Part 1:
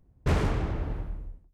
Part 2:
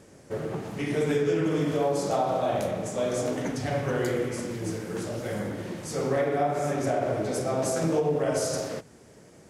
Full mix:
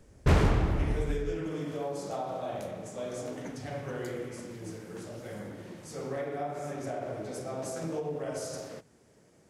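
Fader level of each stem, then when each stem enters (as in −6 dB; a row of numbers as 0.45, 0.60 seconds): +2.5, −9.5 decibels; 0.00, 0.00 seconds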